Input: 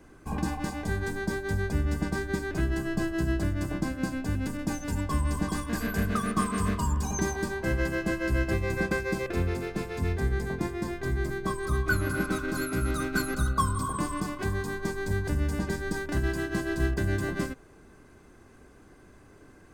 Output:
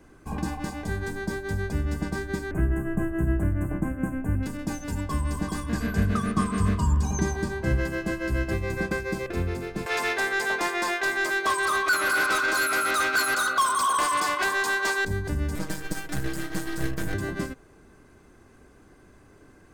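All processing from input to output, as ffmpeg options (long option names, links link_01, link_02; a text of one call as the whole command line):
ffmpeg -i in.wav -filter_complex "[0:a]asettb=1/sr,asplit=3[link_01][link_02][link_03];[link_01]atrim=end=2.514[link_04];[link_02]atrim=start=2.51:end=4.43,asetpts=PTS-STARTPTS,afade=type=in:duration=0.004:curve=qsin,afade=type=out:start_time=1.916:duration=0.004:curve=qsin,asuperstop=centerf=4500:order=4:qfactor=0.64,lowshelf=frequency=210:gain=5[link_05];[link_03]atrim=start=4.426[link_06];[link_04][link_05]acrossfade=duration=0.004:curve1=hsin:curve2=qsin[link_07];[link_07][link_06]acrossfade=duration=0.004:curve1=qsin:curve2=hsin,asettb=1/sr,asplit=3[link_08][link_09][link_10];[link_08]atrim=end=5.634[link_11];[link_09]atrim=start=5.63:end=7.8,asetpts=PTS-STARTPTS,afade=type=in:duration=0.004:curve=qsin,afade=type=out:start_time=2.166:duration=0.004:curve=qsin,acrossover=split=9700[link_12][link_13];[link_13]acompressor=threshold=-58dB:ratio=4:attack=1:release=60[link_14];[link_12][link_14]amix=inputs=2:normalize=0,equalizer=frequency=96:width=0.65:gain=7[link_15];[link_10]atrim=start=7.796[link_16];[link_11][link_15]acrossfade=duration=0.004:curve1=hsin:curve2=qsin[link_17];[link_17][link_16]acrossfade=duration=0.004:curve1=qsin:curve2=hsin,asettb=1/sr,asplit=3[link_18][link_19][link_20];[link_18]atrim=end=9.864[link_21];[link_19]atrim=start=9.86:end=15.05,asetpts=PTS-STARTPTS,afade=type=in:duration=0.004:curve=qsin,afade=type=out:start_time=5.186:duration=0.004:curve=qsin,highpass=570,asplit=2[link_22][link_23];[link_23]highpass=frequency=720:poles=1,volume=24dB,asoftclip=type=tanh:threshold=-15dB[link_24];[link_22][link_24]amix=inputs=2:normalize=0,lowpass=frequency=6000:poles=1,volume=-6dB[link_25];[link_20]atrim=start=15.046[link_26];[link_21][link_25]acrossfade=duration=0.004:curve1=hsin:curve2=qsin[link_27];[link_27][link_26]acrossfade=duration=0.004:curve1=qsin:curve2=hsin,asettb=1/sr,asplit=3[link_28][link_29][link_30];[link_28]atrim=end=15.554[link_31];[link_29]atrim=start=15.55:end=17.14,asetpts=PTS-STARTPTS,afade=type=in:duration=0.004:curve=qsin,afade=type=out:start_time=1.586:duration=0.004:curve=qsin,highshelf=frequency=5400:gain=10,aeval=exprs='max(val(0),0)':channel_layout=same,aecho=1:1:6.3:0.79,atrim=end_sample=70119[link_32];[link_30]atrim=start=17.136[link_33];[link_31][link_32]acrossfade=duration=0.004:curve1=hsin:curve2=qsin[link_34];[link_34][link_33]acrossfade=duration=0.004:curve1=qsin:curve2=hsin" out.wav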